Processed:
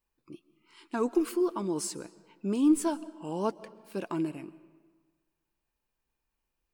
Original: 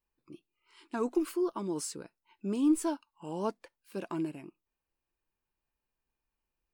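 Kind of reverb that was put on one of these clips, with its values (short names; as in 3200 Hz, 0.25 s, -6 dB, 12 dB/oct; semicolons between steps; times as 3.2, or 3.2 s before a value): digital reverb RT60 1.5 s, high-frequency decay 0.7×, pre-delay 95 ms, DRR 18.5 dB; gain +3 dB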